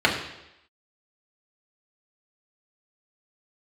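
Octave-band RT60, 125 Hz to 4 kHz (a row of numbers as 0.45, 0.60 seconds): 0.75, 0.85, 0.90, 0.85, 0.90, 0.90 seconds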